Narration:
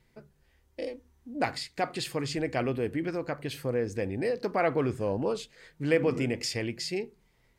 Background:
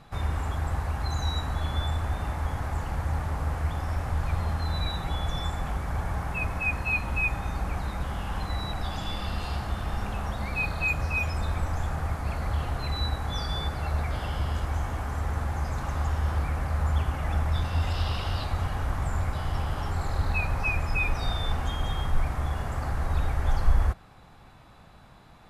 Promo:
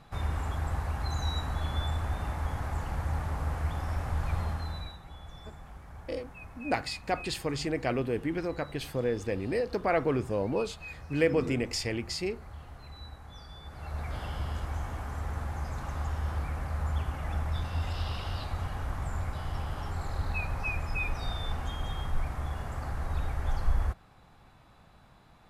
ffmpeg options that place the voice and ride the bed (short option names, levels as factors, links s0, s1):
-filter_complex "[0:a]adelay=5300,volume=0.944[s0];[1:a]volume=2.66,afade=t=out:st=4.4:d=0.58:silence=0.199526,afade=t=in:st=13.63:d=0.54:silence=0.266073[s1];[s0][s1]amix=inputs=2:normalize=0"